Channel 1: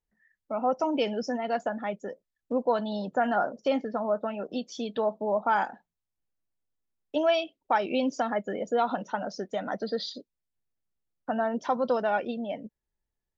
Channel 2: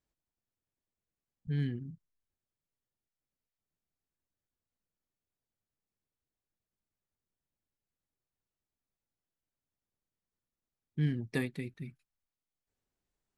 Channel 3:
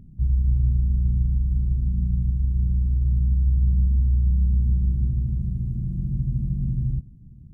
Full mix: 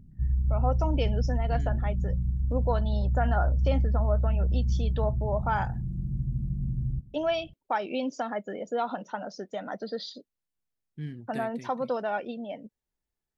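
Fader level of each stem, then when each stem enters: -3.5 dB, -6.5 dB, -5.5 dB; 0.00 s, 0.00 s, 0.00 s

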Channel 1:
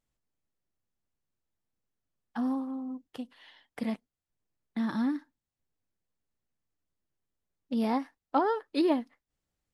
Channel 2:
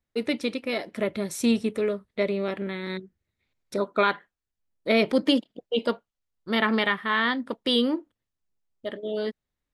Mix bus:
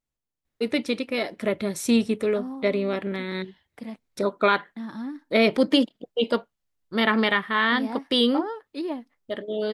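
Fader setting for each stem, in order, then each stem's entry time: -4.5 dB, +2.0 dB; 0.00 s, 0.45 s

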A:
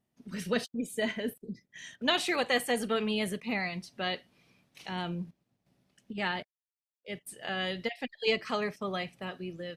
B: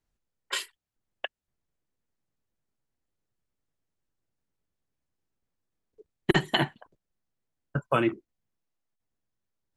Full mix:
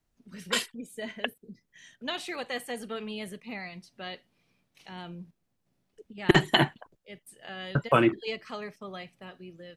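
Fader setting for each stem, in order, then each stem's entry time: -6.5 dB, +3.0 dB; 0.00 s, 0.00 s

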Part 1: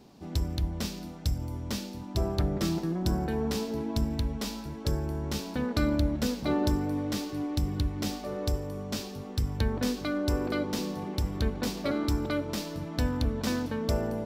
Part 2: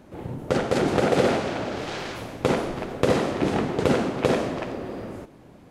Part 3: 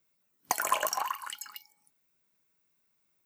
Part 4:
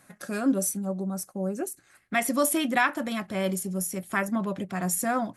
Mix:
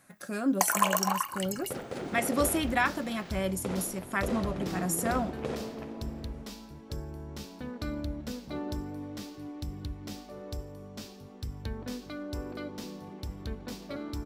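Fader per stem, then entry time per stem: -9.0 dB, -15.0 dB, +2.5 dB, -3.5 dB; 2.05 s, 1.20 s, 0.10 s, 0.00 s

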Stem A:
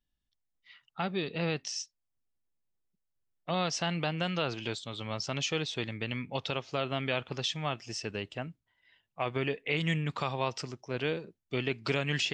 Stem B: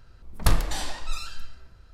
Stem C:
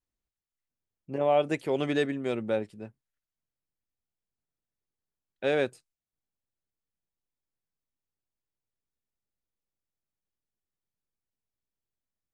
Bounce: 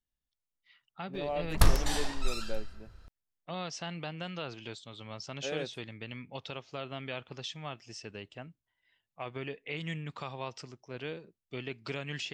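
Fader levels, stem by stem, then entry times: -7.5 dB, -2.0 dB, -11.0 dB; 0.00 s, 1.15 s, 0.00 s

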